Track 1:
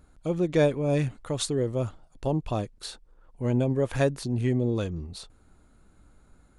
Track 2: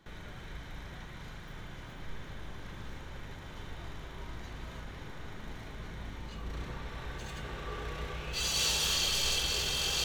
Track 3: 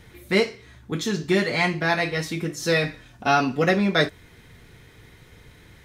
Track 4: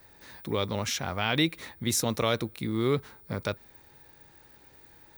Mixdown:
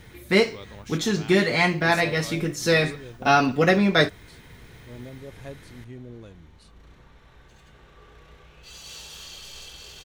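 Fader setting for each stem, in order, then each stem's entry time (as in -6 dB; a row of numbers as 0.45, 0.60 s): -16.0, -11.5, +1.5, -13.5 dB; 1.45, 0.30, 0.00, 0.00 s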